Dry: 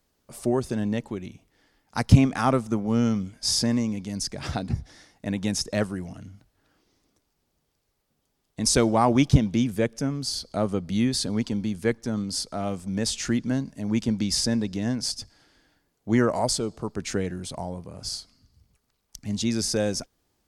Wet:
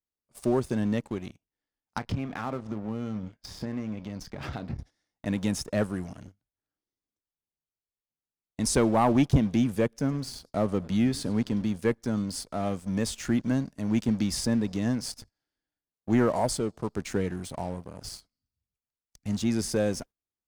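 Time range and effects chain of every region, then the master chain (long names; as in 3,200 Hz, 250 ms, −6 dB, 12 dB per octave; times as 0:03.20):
0:01.98–0:04.79: low-pass filter 3,300 Hz + downward compressor 3 to 1, threshold −31 dBFS + double-tracking delay 28 ms −13 dB
0:09.96–0:11.76: high-shelf EQ 6,300 Hz −5 dB + feedback echo with a swinging delay time 102 ms, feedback 34%, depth 176 cents, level −22 dB
whole clip: noise gate −42 dBFS, range −16 dB; dynamic equaliser 5,000 Hz, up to −8 dB, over −43 dBFS, Q 0.77; leveller curve on the samples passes 2; level −8 dB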